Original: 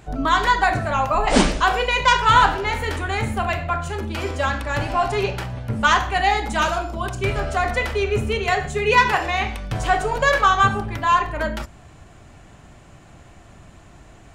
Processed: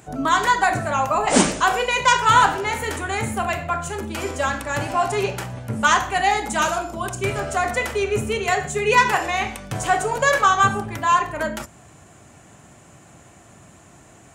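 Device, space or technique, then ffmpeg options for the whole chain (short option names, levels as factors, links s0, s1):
budget condenser microphone: -af "highpass=110,highshelf=f=5700:t=q:w=1.5:g=6.5"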